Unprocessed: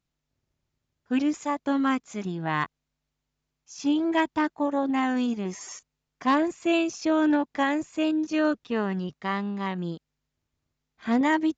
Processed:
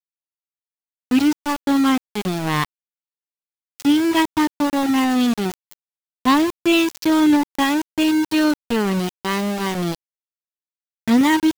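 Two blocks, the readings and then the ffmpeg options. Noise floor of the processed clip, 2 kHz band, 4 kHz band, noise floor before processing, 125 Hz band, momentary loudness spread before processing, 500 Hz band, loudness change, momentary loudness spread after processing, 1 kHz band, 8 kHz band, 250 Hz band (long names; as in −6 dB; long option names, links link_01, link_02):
below −85 dBFS, +6.0 dB, +12.0 dB, −83 dBFS, +7.5 dB, 10 LU, +4.5 dB, +7.5 dB, 7 LU, +5.5 dB, can't be measured, +8.0 dB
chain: -af "agate=range=-33dB:threshold=-40dB:ratio=3:detection=peak,equalizer=frequency=100:width_type=o:width=0.67:gain=11,equalizer=frequency=630:width_type=o:width=0.67:gain=-9,equalizer=frequency=1600:width_type=o:width=0.67:gain=-6,equalizer=frequency=4000:width_type=o:width=0.67:gain=6,aeval=exprs='val(0)*gte(abs(val(0)),0.0335)':channel_layout=same,volume=8.5dB"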